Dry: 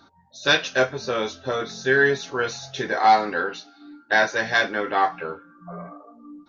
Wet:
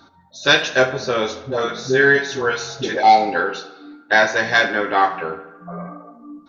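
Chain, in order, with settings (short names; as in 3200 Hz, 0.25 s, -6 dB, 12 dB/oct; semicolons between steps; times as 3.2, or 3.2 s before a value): 1.43–3.03 dispersion highs, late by 89 ms, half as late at 480 Hz; tape echo 71 ms, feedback 63%, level -11.5 dB, low-pass 3800 Hz; 3–3.35 spectral gain 930–2000 Hz -15 dB; gain +4.5 dB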